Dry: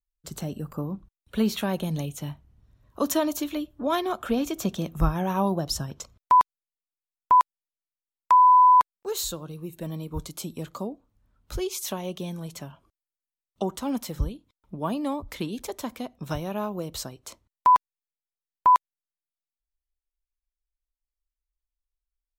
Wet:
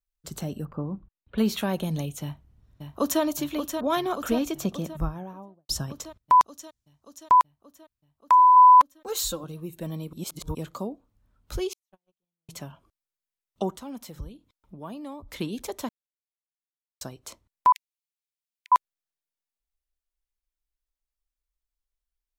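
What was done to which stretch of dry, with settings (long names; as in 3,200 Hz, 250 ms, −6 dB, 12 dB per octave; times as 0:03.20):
0:00.65–0:01.38: high-frequency loss of the air 390 metres
0:02.22–0:03.22: delay throw 580 ms, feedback 70%, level −7 dB
0:04.43–0:05.69: fade out and dull
0:06.34–0:07.33: parametric band 6,200 Hz +11 dB 1.3 octaves
0:08.56–0:09.44: comb filter 3.8 ms, depth 73%
0:10.13–0:10.55: reverse
0:11.73–0:12.49: noise gate −26 dBFS, range −59 dB
0:13.70–0:15.33: downward compressor 1.5 to 1, threshold −52 dBFS
0:15.89–0:17.01: silence
0:17.72–0:18.72: Butterworth high-pass 2,000 Hz 72 dB per octave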